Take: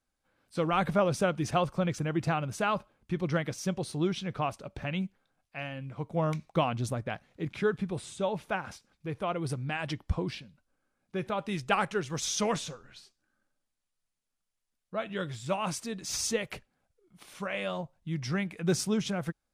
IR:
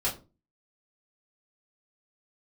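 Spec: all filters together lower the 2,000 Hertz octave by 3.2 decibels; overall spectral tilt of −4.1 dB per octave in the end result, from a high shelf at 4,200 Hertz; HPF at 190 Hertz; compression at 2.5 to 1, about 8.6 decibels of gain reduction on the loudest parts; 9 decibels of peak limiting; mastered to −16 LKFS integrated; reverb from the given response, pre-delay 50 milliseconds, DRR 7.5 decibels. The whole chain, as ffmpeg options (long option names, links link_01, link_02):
-filter_complex "[0:a]highpass=190,equalizer=frequency=2000:width_type=o:gain=-5.5,highshelf=frequency=4200:gain=4,acompressor=threshold=-36dB:ratio=2.5,alimiter=level_in=5dB:limit=-24dB:level=0:latency=1,volume=-5dB,asplit=2[link_01][link_02];[1:a]atrim=start_sample=2205,adelay=50[link_03];[link_02][link_03]afir=irnorm=-1:irlink=0,volume=-15dB[link_04];[link_01][link_04]amix=inputs=2:normalize=0,volume=24dB"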